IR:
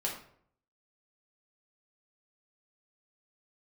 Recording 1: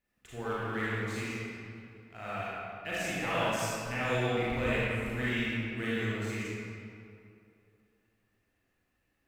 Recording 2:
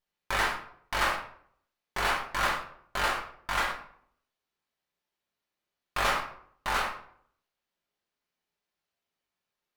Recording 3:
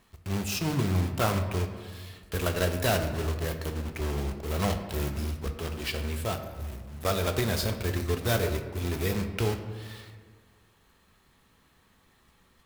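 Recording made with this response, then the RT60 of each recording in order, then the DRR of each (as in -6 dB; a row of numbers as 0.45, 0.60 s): 2; 2.6, 0.60, 1.6 s; -9.5, -3.5, 6.0 dB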